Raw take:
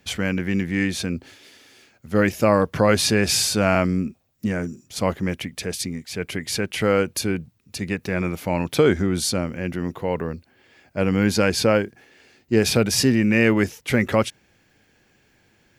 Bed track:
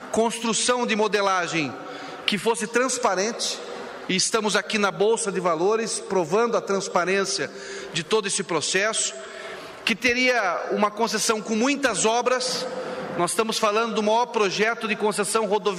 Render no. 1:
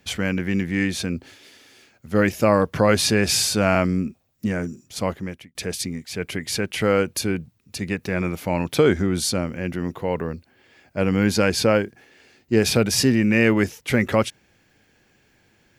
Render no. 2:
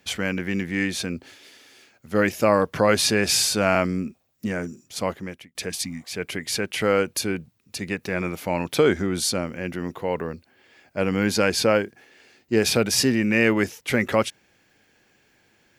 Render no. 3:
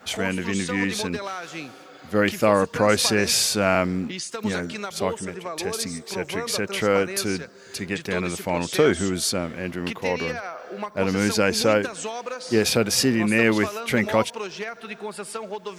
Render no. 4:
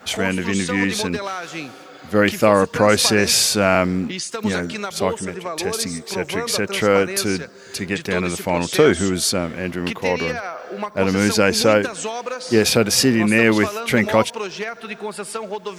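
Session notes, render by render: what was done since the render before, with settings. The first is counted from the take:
0:04.67–0:05.55: fade out equal-power
0:05.72–0:06.07: healed spectral selection 330–1,500 Hz after; low-shelf EQ 180 Hz −8.5 dB
mix in bed track −10.5 dB
level +4.5 dB; brickwall limiter −1 dBFS, peak gain reduction 1.5 dB

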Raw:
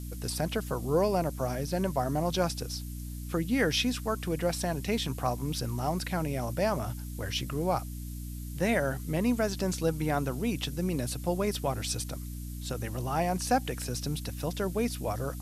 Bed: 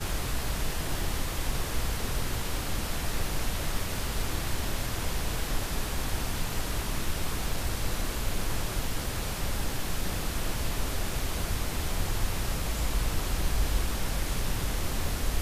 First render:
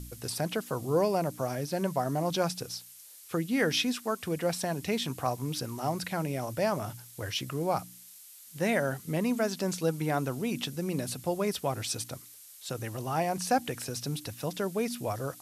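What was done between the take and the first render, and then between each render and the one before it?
hum removal 60 Hz, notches 5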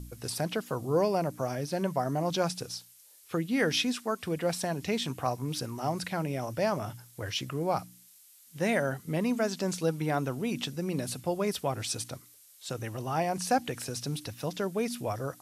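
noise reduction from a noise print 6 dB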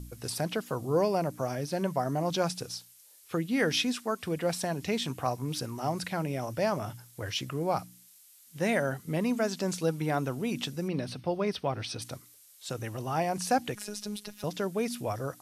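0:10.88–0:12.02: Savitzky-Golay smoothing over 15 samples
0:13.75–0:14.44: phases set to zero 208 Hz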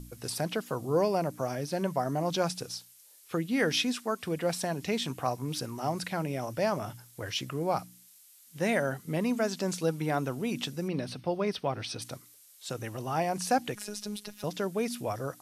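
parametric band 75 Hz −6 dB 0.96 octaves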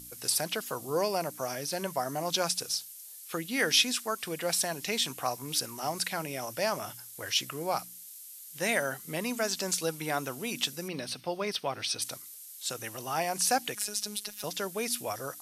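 spectral tilt +3 dB per octave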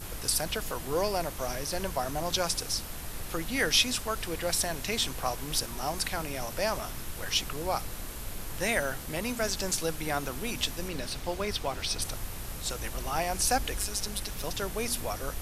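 mix in bed −9 dB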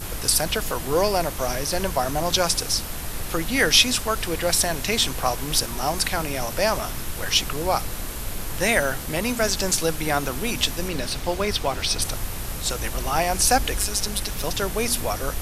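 level +8 dB

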